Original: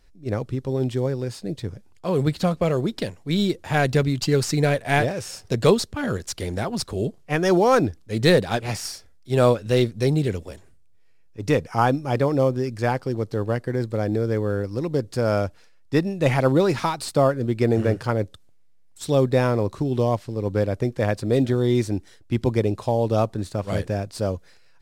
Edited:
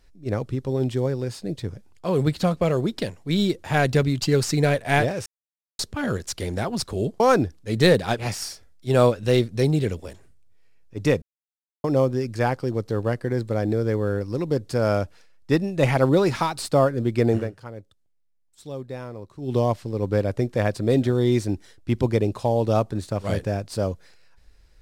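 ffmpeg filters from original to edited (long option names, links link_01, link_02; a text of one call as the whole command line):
ffmpeg -i in.wav -filter_complex "[0:a]asplit=8[link_01][link_02][link_03][link_04][link_05][link_06][link_07][link_08];[link_01]atrim=end=5.26,asetpts=PTS-STARTPTS,afade=type=out:start_time=5.256:duration=0.004:curve=hsin[link_09];[link_02]atrim=start=5.26:end=5.79,asetpts=PTS-STARTPTS,volume=0[link_10];[link_03]atrim=start=5.79:end=7.202,asetpts=PTS-STARTPTS,afade=type=in:duration=0.004:curve=hsin[link_11];[link_04]atrim=start=7.628:end=11.65,asetpts=PTS-STARTPTS,afade=type=out:start_time=4.018:duration=0.004:curve=hsin[link_12];[link_05]atrim=start=11.65:end=12.27,asetpts=PTS-STARTPTS,volume=0[link_13];[link_06]atrim=start=12.27:end=17.93,asetpts=PTS-STARTPTS,afade=type=in:duration=0.004:curve=hsin,afade=type=out:start_time=5.5:duration=0.16:silence=0.177828[link_14];[link_07]atrim=start=17.93:end=19.82,asetpts=PTS-STARTPTS,volume=-15dB[link_15];[link_08]atrim=start=19.82,asetpts=PTS-STARTPTS,afade=type=in:duration=0.16:silence=0.177828[link_16];[link_09][link_10][link_11]concat=n=3:v=0:a=1[link_17];[link_12][link_13][link_14][link_15][link_16]concat=n=5:v=0:a=1[link_18];[link_17][link_18]acrossfade=duration=0.004:curve1=hsin:curve2=hsin" out.wav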